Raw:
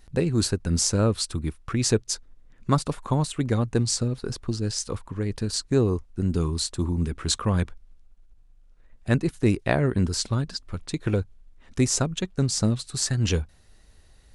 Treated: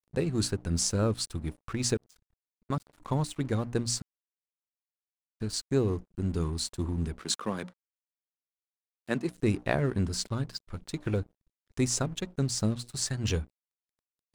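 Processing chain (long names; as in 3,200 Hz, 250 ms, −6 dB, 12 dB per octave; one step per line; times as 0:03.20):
0:07.19–0:09.35: high-pass filter 170 Hz 24 dB per octave
mains-hum notches 60/120/180/240/300 Hz
0:01.94–0:03.00: output level in coarse steps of 23 dB
dead-zone distortion −44 dBFS
0:04.02–0:05.40: silence
level −4.5 dB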